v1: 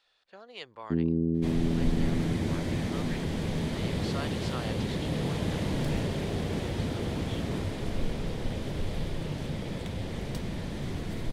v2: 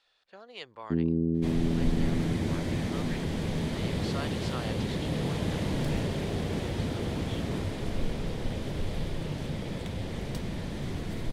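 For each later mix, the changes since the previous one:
none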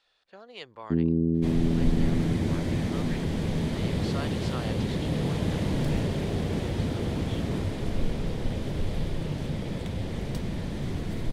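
master: add low shelf 460 Hz +3.5 dB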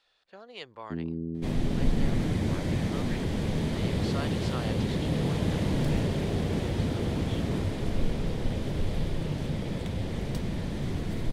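first sound -9.5 dB

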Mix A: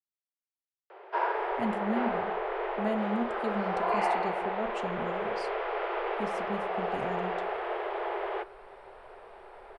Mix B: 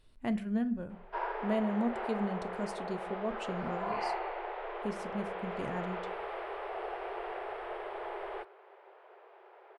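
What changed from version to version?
speech: entry -1.35 s; background -7.0 dB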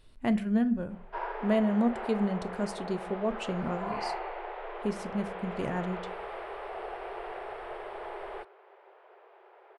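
speech +5.5 dB

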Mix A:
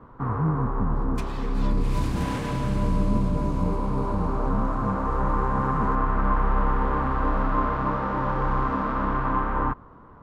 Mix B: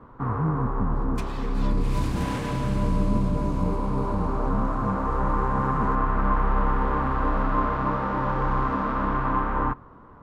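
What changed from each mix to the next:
reverb: on, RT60 0.45 s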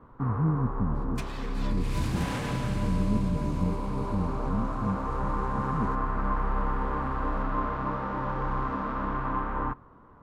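first sound -5.5 dB

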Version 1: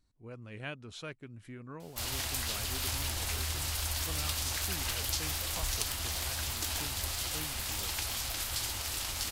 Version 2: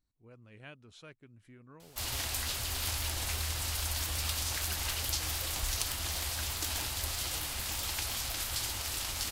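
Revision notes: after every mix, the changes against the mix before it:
speech -9.0 dB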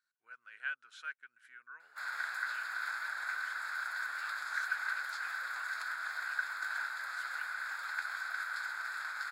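background: add running mean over 15 samples; master: add resonant high-pass 1500 Hz, resonance Q 11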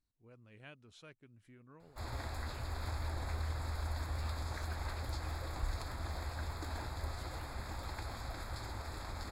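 speech -4.0 dB; master: remove resonant high-pass 1500 Hz, resonance Q 11

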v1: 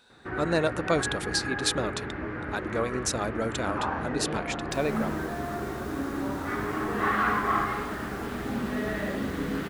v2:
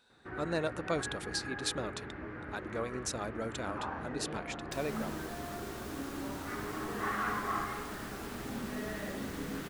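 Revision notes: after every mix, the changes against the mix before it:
speech -8.0 dB; first sound -9.0 dB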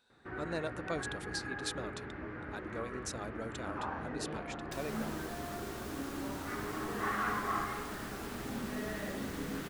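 speech -4.5 dB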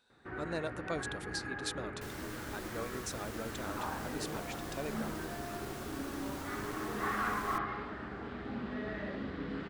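second sound: entry -2.70 s

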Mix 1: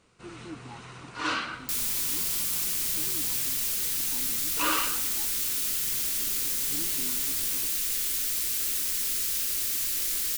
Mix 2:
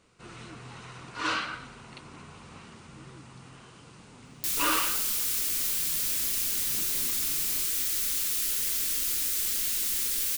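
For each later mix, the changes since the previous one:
speech -9.5 dB; second sound: entry +2.75 s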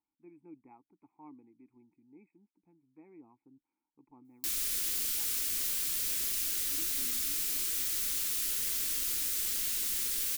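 first sound: muted; second sound -4.0 dB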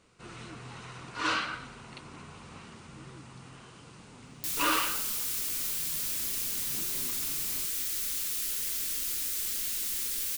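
first sound: unmuted

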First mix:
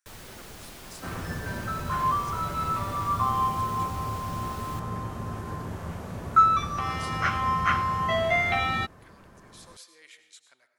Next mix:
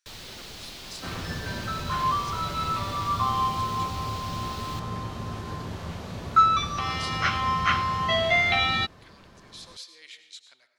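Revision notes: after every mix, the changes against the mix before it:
master: add EQ curve 1600 Hz 0 dB, 4100 Hz +11 dB, 9500 Hz -3 dB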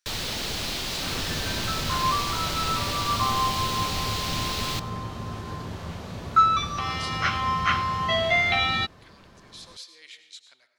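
first sound +11.5 dB

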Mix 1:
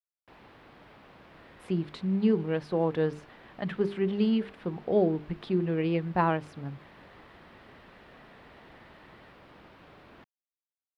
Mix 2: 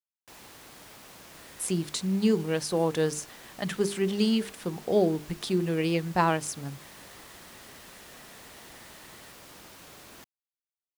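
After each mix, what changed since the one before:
master: remove air absorption 410 m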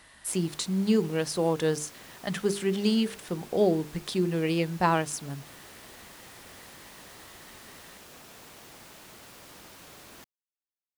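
speech: entry -1.35 s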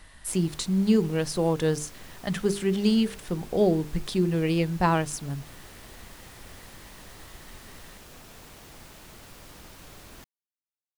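master: remove HPF 220 Hz 6 dB/oct

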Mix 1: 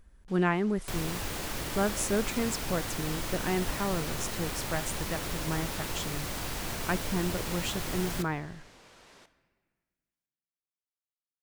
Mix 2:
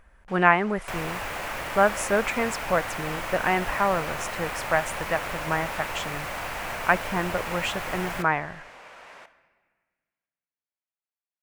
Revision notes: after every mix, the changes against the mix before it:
second sound -4.0 dB; master: add band shelf 1200 Hz +12 dB 2.7 oct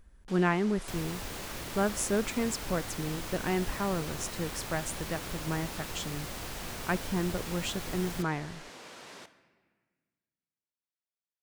first sound +8.0 dB; second sound: send off; master: add band shelf 1200 Hz -12 dB 2.7 oct

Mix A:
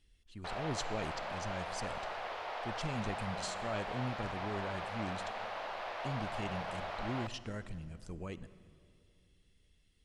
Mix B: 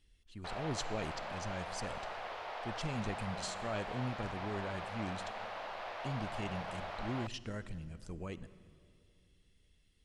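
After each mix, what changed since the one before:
background: send -9.5 dB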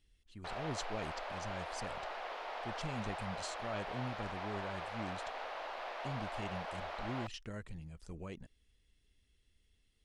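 speech: send off

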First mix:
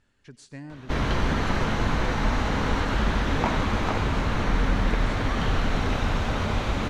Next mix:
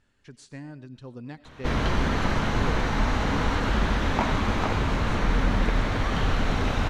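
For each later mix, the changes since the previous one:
background: entry +0.75 s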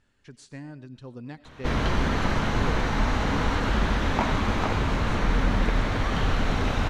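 none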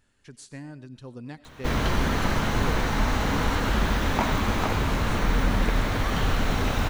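master: remove air absorption 63 m

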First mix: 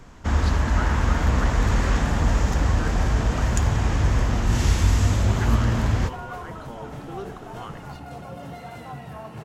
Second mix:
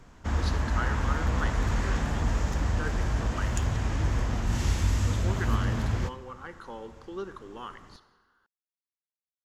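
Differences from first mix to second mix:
first sound -6.5 dB; second sound: muted

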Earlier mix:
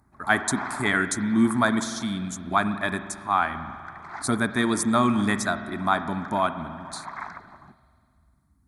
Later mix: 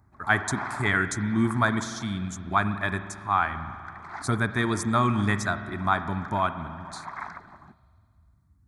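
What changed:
speech: add fifteen-band EQ 100 Hz +9 dB, 250 Hz -6 dB, 630 Hz -4 dB, 4000 Hz -4 dB, 10000 Hz -10 dB; background: send -7.0 dB

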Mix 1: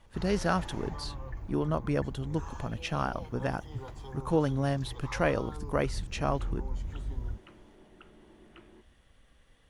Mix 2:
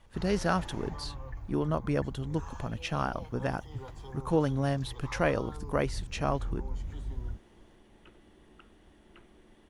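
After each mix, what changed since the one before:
second sound: entry +2.75 s; reverb: off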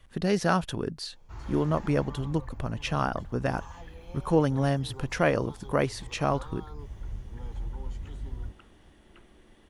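speech +3.5 dB; first sound: entry +1.15 s

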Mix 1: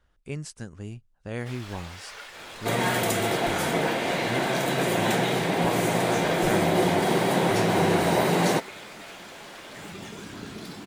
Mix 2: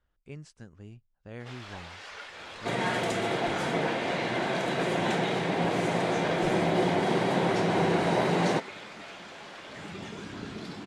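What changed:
speech -9.0 dB; second sound -3.0 dB; master: add air absorption 78 m

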